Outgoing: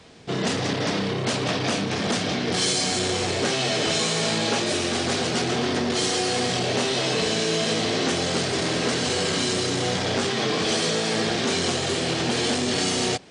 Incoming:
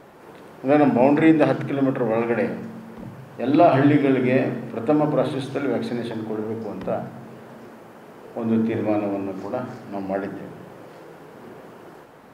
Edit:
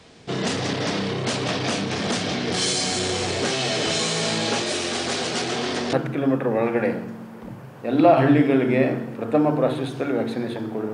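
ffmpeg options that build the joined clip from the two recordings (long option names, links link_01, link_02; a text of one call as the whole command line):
ffmpeg -i cue0.wav -i cue1.wav -filter_complex "[0:a]asettb=1/sr,asplit=3[link_01][link_02][link_03];[link_01]atrim=end=4.624[link_04];[link_02]atrim=start=4.62:end=5.93,asetpts=PTS-STARTPTS,afade=type=in:duration=0.004:curve=qsin,afade=type=out:start_time=1.306:duration=0.004:curve=qsin,lowshelf=frequency=190:gain=-8.5[link_05];[link_03]atrim=start=5.926[link_06];[link_04][link_05]acrossfade=duration=0.004:curve1=hsin:curve2=qsin[link_07];[link_07][link_06]acrossfade=duration=0.004:curve1=qsin:curve2=hsin,apad=whole_dur=10.93,atrim=end=10.93,atrim=end=5.932[link_08];[1:a]atrim=start=1.478:end=6.48[link_09];[link_08][link_09]acrossfade=duration=0.004:curve1=hsin:curve2=hsin" out.wav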